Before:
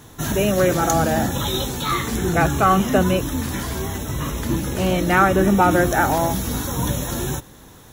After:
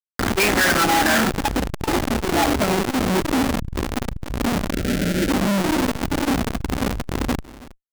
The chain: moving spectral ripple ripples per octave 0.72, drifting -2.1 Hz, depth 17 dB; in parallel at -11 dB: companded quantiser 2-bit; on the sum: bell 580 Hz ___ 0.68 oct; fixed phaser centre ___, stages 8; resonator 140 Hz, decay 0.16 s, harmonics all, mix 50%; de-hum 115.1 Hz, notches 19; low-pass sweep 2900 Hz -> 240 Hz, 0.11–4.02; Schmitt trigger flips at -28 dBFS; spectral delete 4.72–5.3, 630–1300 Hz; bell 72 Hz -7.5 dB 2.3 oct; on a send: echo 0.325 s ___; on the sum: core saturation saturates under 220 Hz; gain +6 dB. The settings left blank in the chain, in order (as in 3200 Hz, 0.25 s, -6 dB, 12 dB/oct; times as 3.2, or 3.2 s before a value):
-11.5 dB, 720 Hz, -21 dB